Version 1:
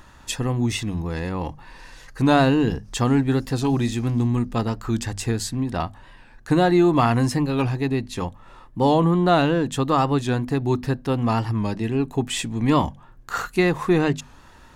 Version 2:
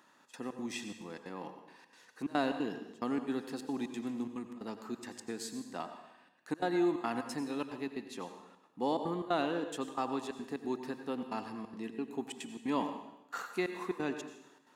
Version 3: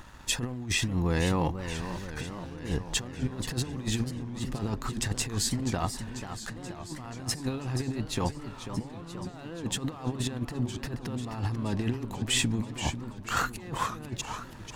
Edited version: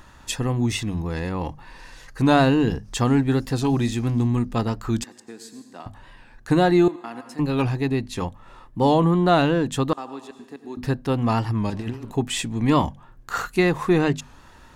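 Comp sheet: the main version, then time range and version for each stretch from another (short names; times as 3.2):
1
5.04–5.86 from 2
6.88–7.39 from 2
9.93–10.77 from 2
11.7–12.11 from 3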